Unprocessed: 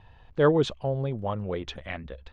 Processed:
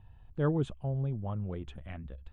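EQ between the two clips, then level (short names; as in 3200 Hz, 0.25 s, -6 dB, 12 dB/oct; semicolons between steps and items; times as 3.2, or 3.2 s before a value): bell 5700 Hz -14.5 dB 0.73 oct; dynamic EQ 4300 Hz, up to -6 dB, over -56 dBFS, Q 2.2; ten-band EQ 250 Hz -3 dB, 500 Hz -11 dB, 1000 Hz -7 dB, 2000 Hz -11 dB, 4000 Hz -8 dB; 0.0 dB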